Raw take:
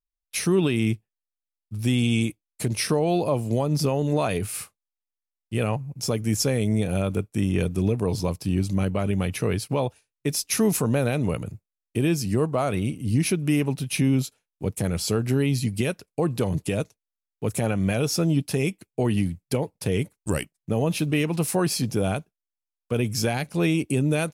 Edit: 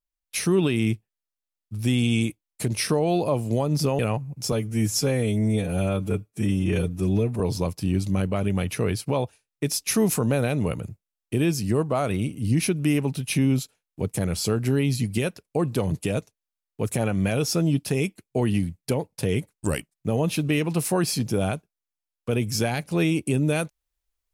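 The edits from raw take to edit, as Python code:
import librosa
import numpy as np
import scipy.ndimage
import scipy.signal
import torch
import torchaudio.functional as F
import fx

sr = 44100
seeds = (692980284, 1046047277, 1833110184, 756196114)

y = fx.edit(x, sr, fx.cut(start_s=3.99, length_s=1.59),
    fx.stretch_span(start_s=6.11, length_s=1.92, factor=1.5), tone=tone)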